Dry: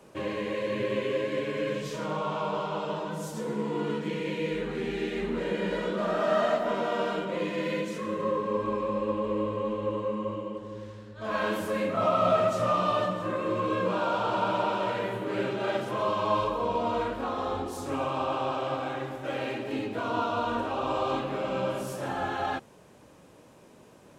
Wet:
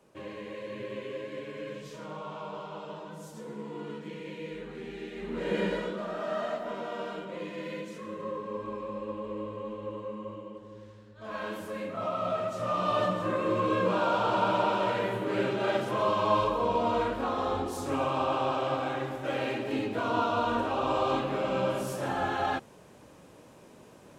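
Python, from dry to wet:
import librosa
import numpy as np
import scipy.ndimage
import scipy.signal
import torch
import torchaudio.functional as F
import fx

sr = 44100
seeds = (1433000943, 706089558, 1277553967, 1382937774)

y = fx.gain(x, sr, db=fx.line((5.16, -9.0), (5.59, 2.0), (6.06, -7.5), (12.51, -7.5), (13.07, 1.0)))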